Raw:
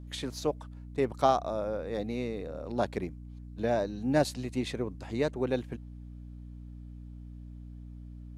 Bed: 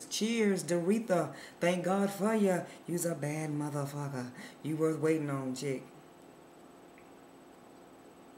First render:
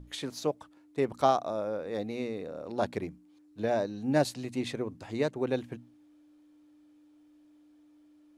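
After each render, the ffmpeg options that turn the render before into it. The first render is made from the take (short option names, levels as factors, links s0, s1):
-af "bandreject=f=60:t=h:w=6,bandreject=f=120:t=h:w=6,bandreject=f=180:t=h:w=6,bandreject=f=240:t=h:w=6"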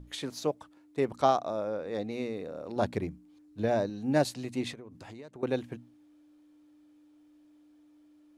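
-filter_complex "[0:a]asettb=1/sr,asplit=3[s0][s1][s2];[s0]atrim=end=1.164[s3];[s1]atrim=start=1.16:end=2.12,asetpts=PTS-STARTPTS,afade=t=in:d=0.004:c=qsin,afade=t=out:st=0.956:d=0.004:c=qsin,lowpass=9400[s4];[s2]atrim=start=2.116[s5];[s3][s4]acrossfade=d=0.004:c1=hsin:c2=qsin[s6];[s6][s5]acrossfade=d=0.004:c1=qsin:c2=hsin,asettb=1/sr,asplit=3[s7][s8][s9];[s7]atrim=end=2.764[s10];[s8]atrim=start=2.76:end=3.9,asetpts=PTS-STARTPTS,afade=t=in:d=0.004:c=qsin,afade=t=out:st=1.136:d=0.004:c=qsin,lowshelf=f=150:g=9[s11];[s9]atrim=start=3.896[s12];[s10][s11]acrossfade=d=0.004:c1=hsin:c2=qsin[s13];[s13][s12]acrossfade=d=0.004:c1=qsin:c2=hsin,asettb=1/sr,asplit=3[s14][s15][s16];[s14]atrim=end=4.734[s17];[s15]atrim=start=4.73:end=5.43,asetpts=PTS-STARTPTS,afade=t=in:d=0.004:c=qsin,afade=t=out:st=0.696:d=0.004:c=qsin,acompressor=threshold=0.00794:ratio=10:attack=3.2:release=140:knee=1:detection=peak[s18];[s16]atrim=start=5.426[s19];[s17][s18]acrossfade=d=0.004:c1=hsin:c2=qsin[s20];[s20][s19]acrossfade=d=0.004:c1=qsin:c2=hsin"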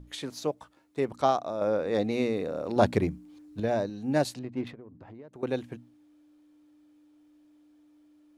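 -filter_complex "[0:a]asettb=1/sr,asplit=3[s0][s1][s2];[s0]atrim=end=0.564[s3];[s1]atrim=start=0.56:end=0.99,asetpts=PTS-STARTPTS,afade=t=in:d=0.004:c=qsin,afade=t=out:st=0.426:d=0.004:c=qsin,asplit=2[s4][s5];[s5]adelay=15,volume=0.631[s6];[s4][s6]amix=inputs=2:normalize=0,atrim=end_sample=18963[s7];[s2]atrim=start=0.986[s8];[s3][s7]acrossfade=d=0.004:c1=hsin:c2=qsin[s9];[s9][s8]acrossfade=d=0.004:c1=qsin:c2=hsin,asettb=1/sr,asplit=3[s10][s11][s12];[s10]atrim=end=1.614[s13];[s11]atrim=start=1.61:end=3.6,asetpts=PTS-STARTPTS,afade=t=in:d=0.004:c=qsin,afade=t=out:st=1.986:d=0.004:c=qsin,acontrast=84[s14];[s12]atrim=start=3.596[s15];[s13][s14]acrossfade=d=0.004:c1=hsin:c2=qsin[s16];[s16][s15]acrossfade=d=0.004:c1=qsin:c2=hsin,asettb=1/sr,asplit=3[s17][s18][s19];[s17]atrim=end=4.394[s20];[s18]atrim=start=4.39:end=5.33,asetpts=PTS-STARTPTS,afade=t=in:d=0.004:c=qsin,afade=t=out:st=0.936:d=0.004:c=qsin,adynamicsmooth=sensitivity=3.5:basefreq=1300[s21];[s19]atrim=start=5.326[s22];[s20][s21]acrossfade=d=0.004:c1=hsin:c2=qsin[s23];[s23][s22]acrossfade=d=0.004:c1=qsin:c2=hsin"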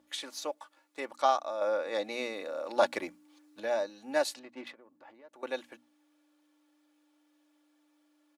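-af "highpass=680,aecho=1:1:3.5:0.55"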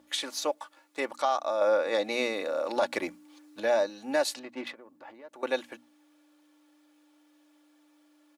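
-af "acontrast=69,alimiter=limit=0.158:level=0:latency=1:release=142"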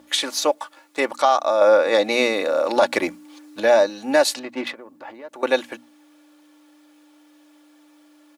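-af "volume=3.16"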